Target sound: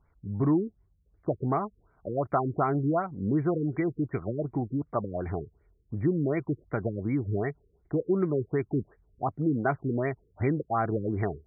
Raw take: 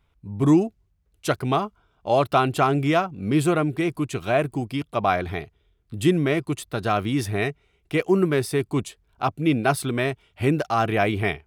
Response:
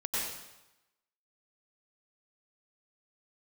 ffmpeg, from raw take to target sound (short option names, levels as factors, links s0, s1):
-af "acompressor=threshold=0.0447:ratio=2,afftfilt=real='re*lt(b*sr/1024,480*pow(2400/480,0.5+0.5*sin(2*PI*2.7*pts/sr)))':imag='im*lt(b*sr/1024,480*pow(2400/480,0.5+0.5*sin(2*PI*2.7*pts/sr)))':win_size=1024:overlap=0.75"